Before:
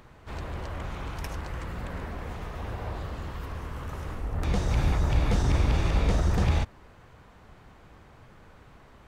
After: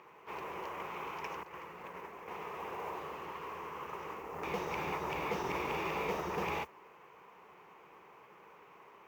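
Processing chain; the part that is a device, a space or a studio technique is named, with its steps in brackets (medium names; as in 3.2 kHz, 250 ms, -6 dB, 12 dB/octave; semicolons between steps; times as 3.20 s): 1.43–2.28 s: expander -29 dBFS; carbon microphone (band-pass 400–2900 Hz; saturation -27 dBFS, distortion -20 dB; modulation noise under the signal 24 dB); rippled EQ curve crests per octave 0.77, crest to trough 9 dB; trim -1 dB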